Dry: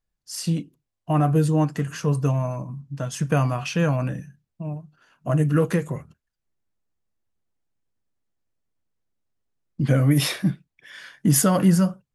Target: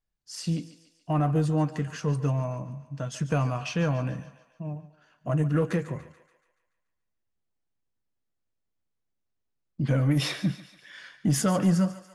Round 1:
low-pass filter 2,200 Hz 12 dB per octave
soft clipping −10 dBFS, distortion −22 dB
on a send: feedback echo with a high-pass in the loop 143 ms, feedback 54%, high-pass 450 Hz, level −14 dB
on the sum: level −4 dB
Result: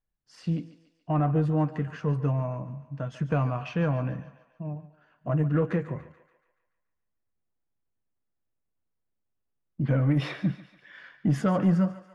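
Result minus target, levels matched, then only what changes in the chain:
8,000 Hz band −18.5 dB
change: low-pass filter 7,200 Hz 12 dB per octave

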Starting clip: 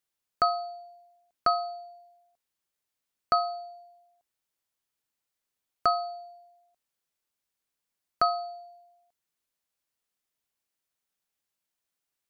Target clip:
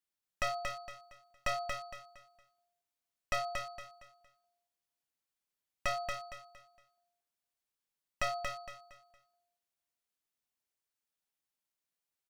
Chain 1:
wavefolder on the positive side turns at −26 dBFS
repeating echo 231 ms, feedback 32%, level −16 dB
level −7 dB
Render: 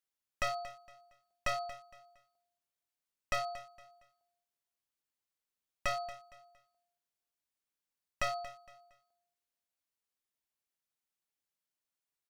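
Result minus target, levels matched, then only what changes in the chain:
echo-to-direct −11.5 dB
change: repeating echo 231 ms, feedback 32%, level −4.5 dB

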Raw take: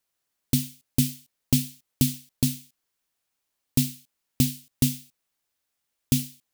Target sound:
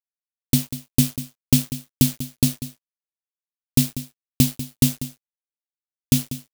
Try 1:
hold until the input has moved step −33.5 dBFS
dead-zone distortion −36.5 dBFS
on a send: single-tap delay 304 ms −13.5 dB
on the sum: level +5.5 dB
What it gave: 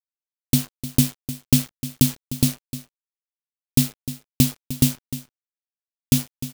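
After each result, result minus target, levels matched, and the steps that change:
echo 111 ms late; hold until the input has moved: distortion +6 dB
change: single-tap delay 193 ms −13.5 dB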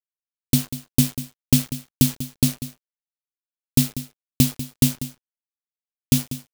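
hold until the input has moved: distortion +6 dB
change: hold until the input has moved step −40.5 dBFS

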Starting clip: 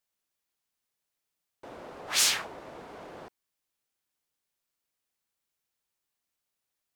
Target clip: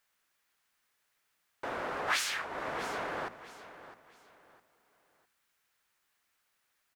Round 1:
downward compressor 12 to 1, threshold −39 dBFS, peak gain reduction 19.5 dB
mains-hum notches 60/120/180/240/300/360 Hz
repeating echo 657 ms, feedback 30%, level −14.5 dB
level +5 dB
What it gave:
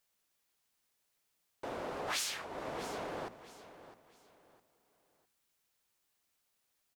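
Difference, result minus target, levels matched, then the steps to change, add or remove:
2,000 Hz band −4.5 dB
add after downward compressor: parametric band 1,600 Hz +10 dB 1.6 octaves

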